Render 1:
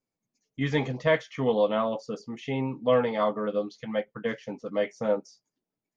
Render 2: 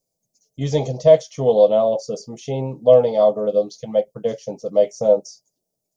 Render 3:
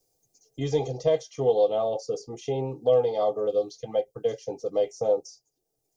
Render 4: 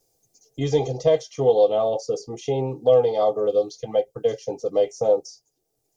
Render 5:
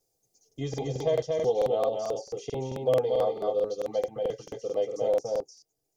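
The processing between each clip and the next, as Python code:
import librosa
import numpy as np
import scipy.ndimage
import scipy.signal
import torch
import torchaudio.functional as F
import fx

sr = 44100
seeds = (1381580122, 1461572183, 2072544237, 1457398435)

y1 = fx.curve_eq(x, sr, hz=(170.0, 260.0, 630.0, 1000.0, 1700.0, 5700.0), db=(0, -8, 7, -10, -21, 8))
y1 = F.gain(torch.from_numpy(y1), 7.0).numpy()
y2 = y1 + 0.7 * np.pad(y1, (int(2.5 * sr / 1000.0), 0))[:len(y1)]
y2 = fx.band_squash(y2, sr, depth_pct=40)
y2 = F.gain(torch.from_numpy(y2), -7.5).numpy()
y3 = fx.wow_flutter(y2, sr, seeds[0], rate_hz=2.1, depth_cents=16.0)
y3 = F.gain(torch.from_numpy(y3), 4.5).numpy()
y4 = y3 + 10.0 ** (-3.5 / 20.0) * np.pad(y3, (int(233 * sr / 1000.0), 0))[:len(y3)]
y4 = fx.buffer_crackle(y4, sr, first_s=0.47, period_s=0.22, block=2048, kind='repeat')
y4 = F.gain(torch.from_numpy(y4), -8.0).numpy()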